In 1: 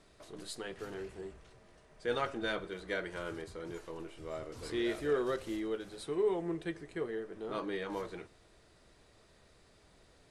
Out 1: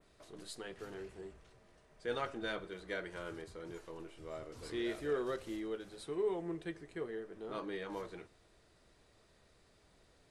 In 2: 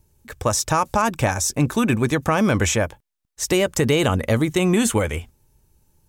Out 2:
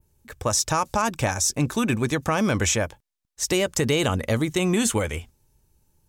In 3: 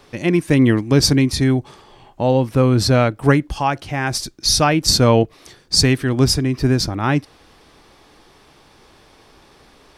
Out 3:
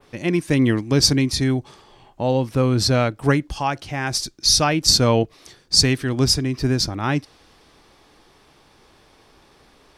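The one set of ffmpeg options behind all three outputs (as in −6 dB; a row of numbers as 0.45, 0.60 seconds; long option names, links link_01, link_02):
-af "adynamicequalizer=threshold=0.0158:dfrequency=5400:dqfactor=0.76:tfrequency=5400:tqfactor=0.76:attack=5:release=100:ratio=0.375:range=2.5:mode=boostabove:tftype=bell,volume=-4dB"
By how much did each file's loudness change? −4.0, −3.0, −2.5 LU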